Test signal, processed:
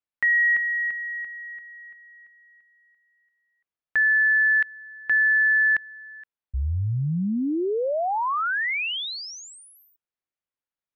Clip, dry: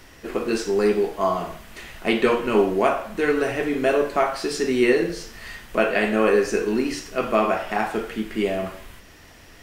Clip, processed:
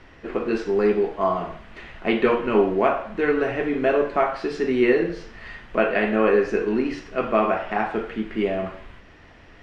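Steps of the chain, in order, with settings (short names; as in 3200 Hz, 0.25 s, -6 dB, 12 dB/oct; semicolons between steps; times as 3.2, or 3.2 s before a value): LPF 2700 Hz 12 dB/oct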